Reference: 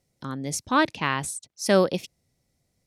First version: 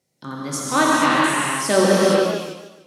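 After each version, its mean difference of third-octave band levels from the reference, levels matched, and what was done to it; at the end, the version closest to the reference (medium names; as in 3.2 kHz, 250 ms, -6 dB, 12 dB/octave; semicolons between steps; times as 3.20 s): 13.0 dB: high-pass 160 Hz 12 dB/octave; gated-style reverb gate 500 ms flat, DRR -6.5 dB; modulated delay 149 ms, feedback 40%, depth 141 cents, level -9 dB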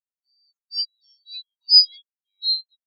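23.0 dB: four frequency bands reordered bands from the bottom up 4321; ever faster or slower copies 409 ms, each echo -3 st, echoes 2; spectral contrast expander 4:1; trim +2.5 dB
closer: first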